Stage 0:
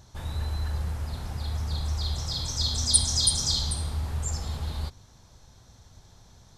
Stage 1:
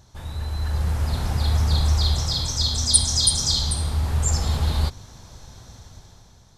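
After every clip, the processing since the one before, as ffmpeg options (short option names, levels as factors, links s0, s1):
-af "dynaudnorm=f=180:g=9:m=3.35"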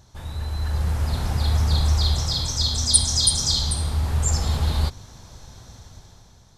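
-af anull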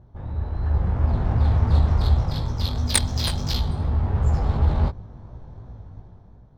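-af "adynamicsmooth=sensitivity=1:basefreq=840,flanger=delay=16.5:depth=5.2:speed=2.8,volume=2.24"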